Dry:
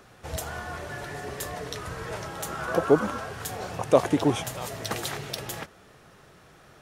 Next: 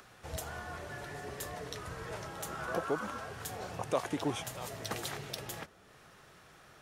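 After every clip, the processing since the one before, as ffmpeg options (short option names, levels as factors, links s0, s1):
-filter_complex "[0:a]acrossover=split=810[s0][s1];[s0]alimiter=limit=0.133:level=0:latency=1:release=377[s2];[s1]acompressor=mode=upward:threshold=0.00501:ratio=2.5[s3];[s2][s3]amix=inputs=2:normalize=0,volume=0.447"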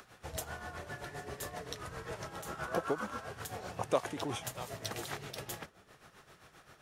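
-af "tremolo=f=7.6:d=0.66,volume=1.26"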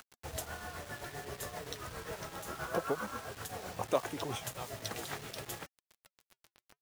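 -af "acrusher=bits=7:mix=0:aa=0.000001,flanger=delay=1.4:depth=3.1:regen=-73:speed=0.69:shape=triangular,volume=1.58"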